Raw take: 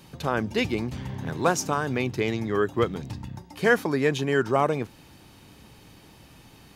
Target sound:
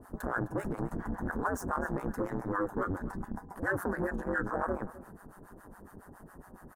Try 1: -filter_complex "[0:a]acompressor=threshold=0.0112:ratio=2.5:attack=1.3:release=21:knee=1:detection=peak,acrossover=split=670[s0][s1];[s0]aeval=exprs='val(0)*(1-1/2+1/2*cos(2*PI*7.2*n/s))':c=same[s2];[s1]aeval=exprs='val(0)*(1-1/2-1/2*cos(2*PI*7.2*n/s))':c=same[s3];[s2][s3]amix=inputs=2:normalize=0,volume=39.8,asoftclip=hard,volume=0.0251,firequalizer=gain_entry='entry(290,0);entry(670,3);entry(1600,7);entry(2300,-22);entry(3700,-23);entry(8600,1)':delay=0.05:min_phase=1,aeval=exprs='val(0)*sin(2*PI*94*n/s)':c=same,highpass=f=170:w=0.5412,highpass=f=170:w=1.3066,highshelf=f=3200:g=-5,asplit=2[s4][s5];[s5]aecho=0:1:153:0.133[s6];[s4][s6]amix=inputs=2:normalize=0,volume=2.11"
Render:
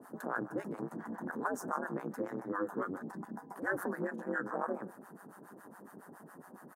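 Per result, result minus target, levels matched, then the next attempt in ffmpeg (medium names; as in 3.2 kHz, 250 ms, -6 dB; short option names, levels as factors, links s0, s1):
echo 105 ms early; 125 Hz band -6.5 dB; compression: peak gain reduction +5 dB
-filter_complex "[0:a]acompressor=threshold=0.0112:ratio=2.5:attack=1.3:release=21:knee=1:detection=peak,acrossover=split=670[s0][s1];[s0]aeval=exprs='val(0)*(1-1/2+1/2*cos(2*PI*7.2*n/s))':c=same[s2];[s1]aeval=exprs='val(0)*(1-1/2-1/2*cos(2*PI*7.2*n/s))':c=same[s3];[s2][s3]amix=inputs=2:normalize=0,volume=39.8,asoftclip=hard,volume=0.0251,firequalizer=gain_entry='entry(290,0);entry(670,3);entry(1600,7);entry(2300,-22);entry(3700,-23);entry(8600,1)':delay=0.05:min_phase=1,aeval=exprs='val(0)*sin(2*PI*94*n/s)':c=same,highpass=f=170:w=0.5412,highpass=f=170:w=1.3066,highshelf=f=3200:g=-5,asplit=2[s4][s5];[s5]aecho=0:1:258:0.133[s6];[s4][s6]amix=inputs=2:normalize=0,volume=2.11"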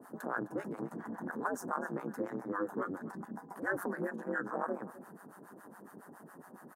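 125 Hz band -6.5 dB; compression: peak gain reduction +5 dB
-filter_complex "[0:a]acompressor=threshold=0.0112:ratio=2.5:attack=1.3:release=21:knee=1:detection=peak,acrossover=split=670[s0][s1];[s0]aeval=exprs='val(0)*(1-1/2+1/2*cos(2*PI*7.2*n/s))':c=same[s2];[s1]aeval=exprs='val(0)*(1-1/2-1/2*cos(2*PI*7.2*n/s))':c=same[s3];[s2][s3]amix=inputs=2:normalize=0,volume=39.8,asoftclip=hard,volume=0.0251,firequalizer=gain_entry='entry(290,0);entry(670,3);entry(1600,7);entry(2300,-22);entry(3700,-23);entry(8600,1)':delay=0.05:min_phase=1,aeval=exprs='val(0)*sin(2*PI*94*n/s)':c=same,highshelf=f=3200:g=-5,asplit=2[s4][s5];[s5]aecho=0:1:258:0.133[s6];[s4][s6]amix=inputs=2:normalize=0,volume=2.11"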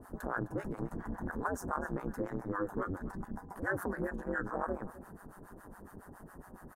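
compression: peak gain reduction +5 dB
-filter_complex "[0:a]acompressor=threshold=0.0282:ratio=2.5:attack=1.3:release=21:knee=1:detection=peak,acrossover=split=670[s0][s1];[s0]aeval=exprs='val(0)*(1-1/2+1/2*cos(2*PI*7.2*n/s))':c=same[s2];[s1]aeval=exprs='val(0)*(1-1/2-1/2*cos(2*PI*7.2*n/s))':c=same[s3];[s2][s3]amix=inputs=2:normalize=0,volume=39.8,asoftclip=hard,volume=0.0251,firequalizer=gain_entry='entry(290,0);entry(670,3);entry(1600,7);entry(2300,-22);entry(3700,-23);entry(8600,1)':delay=0.05:min_phase=1,aeval=exprs='val(0)*sin(2*PI*94*n/s)':c=same,highshelf=f=3200:g=-5,asplit=2[s4][s5];[s5]aecho=0:1:258:0.133[s6];[s4][s6]amix=inputs=2:normalize=0,volume=2.11"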